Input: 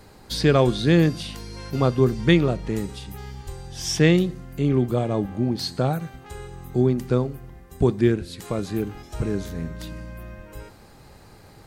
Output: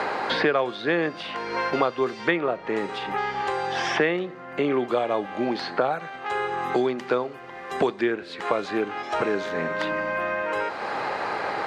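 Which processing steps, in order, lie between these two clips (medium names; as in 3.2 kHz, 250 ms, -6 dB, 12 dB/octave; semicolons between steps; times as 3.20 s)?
band-pass 650–2200 Hz; three bands compressed up and down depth 100%; trim +7.5 dB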